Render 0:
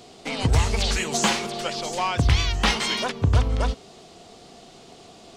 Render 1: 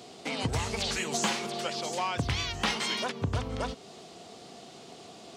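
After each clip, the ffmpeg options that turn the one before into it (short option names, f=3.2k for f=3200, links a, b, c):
-af "highpass=110,acompressor=threshold=-35dB:ratio=1.5,volume=-1dB"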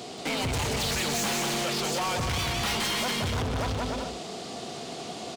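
-af "asoftclip=type=tanh:threshold=-27dB,aecho=1:1:180|297|373|422.5|454.6:0.631|0.398|0.251|0.158|0.1,asoftclip=type=hard:threshold=-35dB,volume=8.5dB"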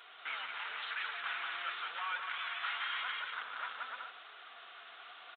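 -af "aresample=8000,acrusher=bits=5:mode=log:mix=0:aa=0.000001,aresample=44100,flanger=delay=2:depth=9.8:regen=-46:speed=0.92:shape=sinusoidal,highpass=f=1.4k:t=q:w=3.9,volume=-7.5dB"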